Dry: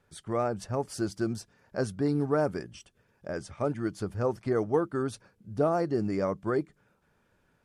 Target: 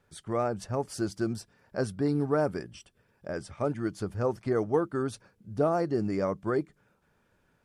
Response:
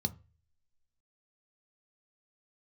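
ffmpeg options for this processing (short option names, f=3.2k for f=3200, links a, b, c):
-filter_complex "[0:a]asettb=1/sr,asplit=3[a][b][c];[a]atrim=end=1.334[d];[b]atrim=start=1.33:end=3.5,asetpts=PTS-STARTPTS,afade=t=in:d=0.004:c=qsin,afade=t=out:st=2.166:d=0.004:c=qsin,bandreject=f=6.5k:w=10[e];[c]atrim=start=3.496[f];[d][e]acrossfade=d=0.004:c1=hsin:c2=qsin[g];[g][f]acrossfade=d=0.004:c1=qsin:c2=hsin"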